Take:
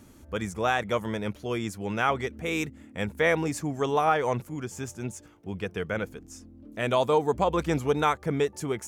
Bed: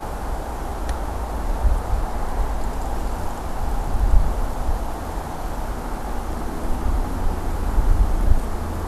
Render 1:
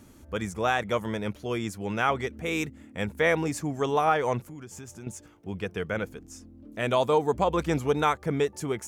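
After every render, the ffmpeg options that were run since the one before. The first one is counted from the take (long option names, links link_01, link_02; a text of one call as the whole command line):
ffmpeg -i in.wav -filter_complex "[0:a]asettb=1/sr,asplit=3[link_01][link_02][link_03];[link_01]atrim=end=4.394[link_04];[link_02]atrim=start=4.39:end=5.07,asetpts=PTS-STARTPTS,afade=type=in:duration=0.004:curve=qsin,afade=type=out:start_time=0.676:duration=0.004:curve=qsin,acompressor=threshold=-39dB:ratio=4:attack=3.2:release=140:knee=1:detection=peak[link_05];[link_03]atrim=start=5.066[link_06];[link_04][link_05]acrossfade=duration=0.004:curve1=hsin:curve2=qsin[link_07];[link_07][link_06]acrossfade=duration=0.004:curve1=qsin:curve2=hsin" out.wav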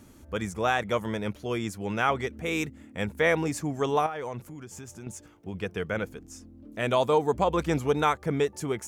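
ffmpeg -i in.wav -filter_complex "[0:a]asettb=1/sr,asplit=3[link_01][link_02][link_03];[link_01]atrim=end=4.064[link_04];[link_02]atrim=start=4.06:end=5.55,asetpts=PTS-STARTPTS,afade=type=in:duration=0.004:curve=qsin,afade=type=out:start_time=1.486:duration=0.004:curve=qsin,acompressor=threshold=-30dB:ratio=12:attack=3.2:release=140:knee=1:detection=peak[link_05];[link_03]atrim=start=5.546[link_06];[link_04][link_05]acrossfade=duration=0.004:curve1=hsin:curve2=qsin[link_07];[link_07][link_06]acrossfade=duration=0.004:curve1=qsin:curve2=hsin" out.wav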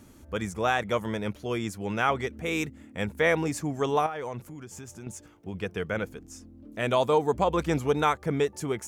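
ffmpeg -i in.wav -af anull out.wav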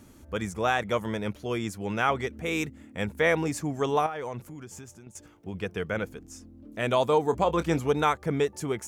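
ffmpeg -i in.wav -filter_complex "[0:a]asettb=1/sr,asplit=3[link_01][link_02][link_03];[link_01]atrim=end=7.234[link_04];[link_02]atrim=start=7.23:end=7.8,asetpts=PTS-STARTPTS,afade=type=in:duration=0.004:curve=qsin,afade=type=out:start_time=0.566:duration=0.004:curve=qsin,asplit=2[link_05][link_06];[link_06]adelay=24,volume=-13dB[link_07];[link_05][link_07]amix=inputs=2:normalize=0,atrim=end_sample=25137[link_08];[link_03]atrim=start=7.796[link_09];[link_04][link_08]acrossfade=duration=0.004:curve1=hsin:curve2=qsin[link_10];[link_10][link_09]acrossfade=duration=0.004:curve1=qsin:curve2=hsin,asplit=2[link_11][link_12];[link_11]atrim=end=5.15,asetpts=PTS-STARTPTS,afade=type=out:start_time=4.73:duration=0.42:silence=0.199526[link_13];[link_12]atrim=start=5.15,asetpts=PTS-STARTPTS,afade=type=in:duration=0.004:curve=hsin:silence=0.199526[link_14];[link_13][link_14]concat=n=2:v=0:a=1" out.wav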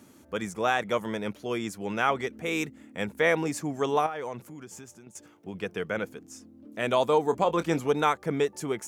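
ffmpeg -i in.wav -af "highpass=160" out.wav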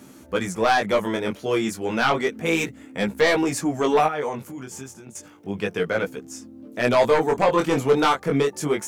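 ffmpeg -i in.wav -af "aeval=exprs='0.335*sin(PI/2*2.24*val(0)/0.335)':channel_layout=same,flanger=delay=15:depth=7.9:speed=0.31" out.wav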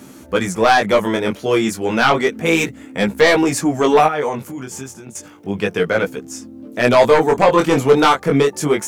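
ffmpeg -i in.wav -af "volume=6.5dB" out.wav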